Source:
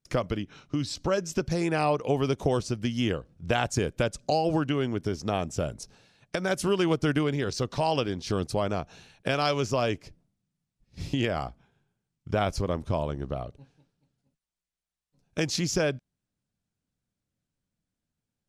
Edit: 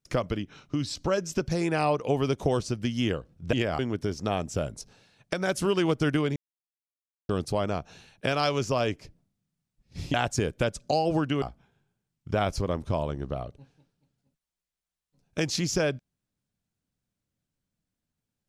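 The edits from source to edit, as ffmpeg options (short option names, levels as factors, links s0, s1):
-filter_complex "[0:a]asplit=7[s0][s1][s2][s3][s4][s5][s6];[s0]atrim=end=3.532[s7];[s1]atrim=start=11.158:end=11.422[s8];[s2]atrim=start=4.808:end=7.38,asetpts=PTS-STARTPTS,afade=t=out:st=2.568:d=0.004:c=hsin[s9];[s3]atrim=start=7.38:end=8.31,asetpts=PTS-STARTPTS,volume=0[s10];[s4]atrim=start=8.31:end=11.162,asetpts=PTS-STARTPTS,afade=t=in:d=0.004:c=hsin[s11];[s5]atrim=start=3.528:end=4.812[s12];[s6]atrim=start=11.418[s13];[s7][s8]acrossfade=d=0.004:c1=hsin:c2=hsin[s14];[s9][s10][s11]concat=n=3:v=0:a=1[s15];[s14][s15]acrossfade=d=0.004:c1=hsin:c2=hsin[s16];[s16][s12]acrossfade=d=0.004:c1=hsin:c2=hsin[s17];[s17][s13]acrossfade=d=0.004:c1=hsin:c2=hsin"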